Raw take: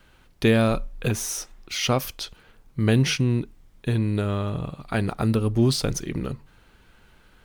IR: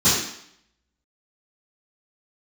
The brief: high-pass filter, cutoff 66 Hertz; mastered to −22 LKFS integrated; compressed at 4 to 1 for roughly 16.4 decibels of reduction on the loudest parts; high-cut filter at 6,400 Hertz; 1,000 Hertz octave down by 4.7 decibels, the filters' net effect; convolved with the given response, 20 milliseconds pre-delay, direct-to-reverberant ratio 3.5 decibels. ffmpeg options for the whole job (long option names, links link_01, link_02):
-filter_complex "[0:a]highpass=66,lowpass=6400,equalizer=frequency=1000:width_type=o:gain=-7,acompressor=threshold=-36dB:ratio=4,asplit=2[link_01][link_02];[1:a]atrim=start_sample=2205,adelay=20[link_03];[link_02][link_03]afir=irnorm=-1:irlink=0,volume=-22dB[link_04];[link_01][link_04]amix=inputs=2:normalize=0,volume=12.5dB"